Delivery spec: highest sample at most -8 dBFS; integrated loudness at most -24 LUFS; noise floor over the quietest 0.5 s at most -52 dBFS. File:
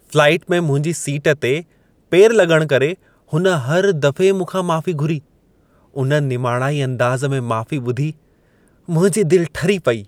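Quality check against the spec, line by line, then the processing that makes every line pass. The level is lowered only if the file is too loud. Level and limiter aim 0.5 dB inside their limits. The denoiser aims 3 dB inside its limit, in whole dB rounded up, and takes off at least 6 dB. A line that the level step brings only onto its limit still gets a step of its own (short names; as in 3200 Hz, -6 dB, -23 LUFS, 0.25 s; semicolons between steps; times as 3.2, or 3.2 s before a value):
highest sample -1.5 dBFS: fail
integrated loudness -17.0 LUFS: fail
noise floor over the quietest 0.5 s -55 dBFS: OK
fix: gain -7.5 dB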